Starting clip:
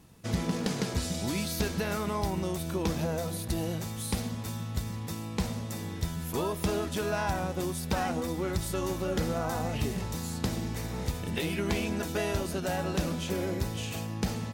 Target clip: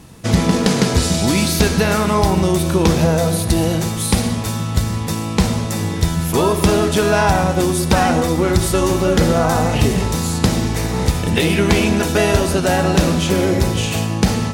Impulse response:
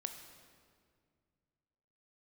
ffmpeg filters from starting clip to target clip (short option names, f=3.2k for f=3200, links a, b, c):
-filter_complex "[0:a]asplit=2[a][b];[1:a]atrim=start_sample=2205,afade=t=out:st=0.17:d=0.01,atrim=end_sample=7938,asetrate=22491,aresample=44100[c];[b][c]afir=irnorm=-1:irlink=0,volume=7.5dB[d];[a][d]amix=inputs=2:normalize=0,volume=4dB"